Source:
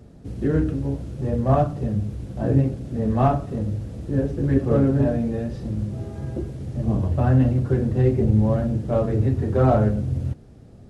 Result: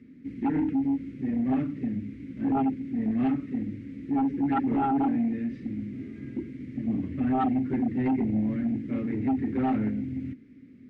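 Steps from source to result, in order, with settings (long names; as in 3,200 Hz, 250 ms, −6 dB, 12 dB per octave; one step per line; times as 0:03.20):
pair of resonant band-passes 750 Hz, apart 3 octaves
sine wavefolder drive 12 dB, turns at −13 dBFS
level −8 dB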